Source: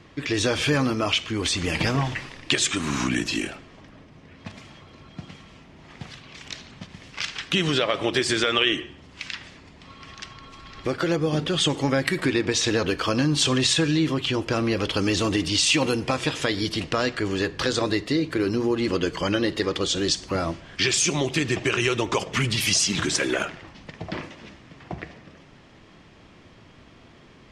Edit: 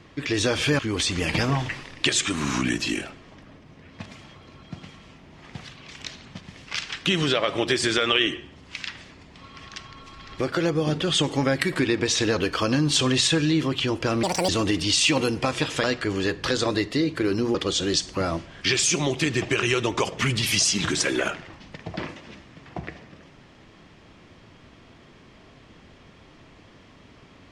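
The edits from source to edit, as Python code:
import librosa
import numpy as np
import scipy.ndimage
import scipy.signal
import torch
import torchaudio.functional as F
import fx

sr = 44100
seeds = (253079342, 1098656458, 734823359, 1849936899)

y = fx.edit(x, sr, fx.cut(start_s=0.79, length_s=0.46),
    fx.speed_span(start_s=14.69, length_s=0.45, speed=1.76),
    fx.cut(start_s=16.49, length_s=0.5),
    fx.cut(start_s=18.7, length_s=0.99), tone=tone)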